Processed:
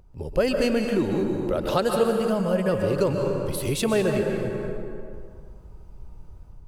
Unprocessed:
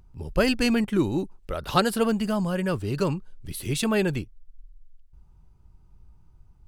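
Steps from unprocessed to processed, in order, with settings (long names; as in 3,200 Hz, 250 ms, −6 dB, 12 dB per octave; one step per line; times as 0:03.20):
automatic gain control gain up to 8.5 dB
dense smooth reverb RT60 1.9 s, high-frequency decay 0.6×, pre-delay 115 ms, DRR 3.5 dB
downward compressor 2.5 to 1, threshold −28 dBFS, peak gain reduction 12 dB
parametric band 520 Hz +9.5 dB 0.84 octaves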